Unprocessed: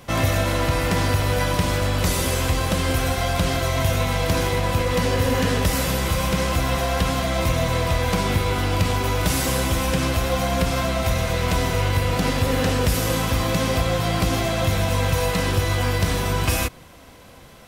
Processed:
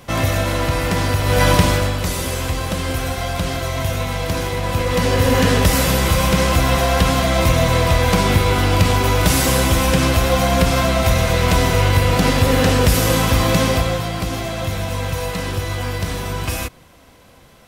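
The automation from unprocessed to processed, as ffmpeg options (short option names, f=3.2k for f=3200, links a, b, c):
-af "volume=15.5dB,afade=t=in:st=1.23:d=0.26:silence=0.446684,afade=t=out:st=1.49:d=0.49:silence=0.334965,afade=t=in:st=4.56:d=0.84:silence=0.473151,afade=t=out:st=13.59:d=0.51:silence=0.398107"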